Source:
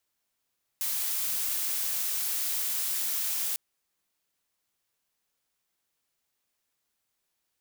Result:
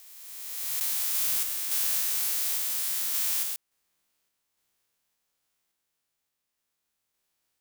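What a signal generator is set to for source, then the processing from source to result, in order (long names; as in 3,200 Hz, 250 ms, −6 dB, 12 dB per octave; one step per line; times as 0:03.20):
noise blue, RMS −30 dBFS 2.75 s
peak hold with a rise ahead of every peak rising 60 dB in 2.24 s
sample-and-hold tremolo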